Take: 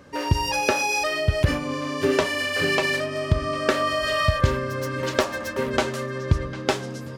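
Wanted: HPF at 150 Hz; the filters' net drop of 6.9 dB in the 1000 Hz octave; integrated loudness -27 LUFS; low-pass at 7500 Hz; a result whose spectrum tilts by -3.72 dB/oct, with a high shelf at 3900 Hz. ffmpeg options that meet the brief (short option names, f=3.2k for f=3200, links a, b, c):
-af "highpass=150,lowpass=7.5k,equalizer=f=1k:t=o:g=-8,highshelf=f=3.9k:g=-8,volume=0.5dB"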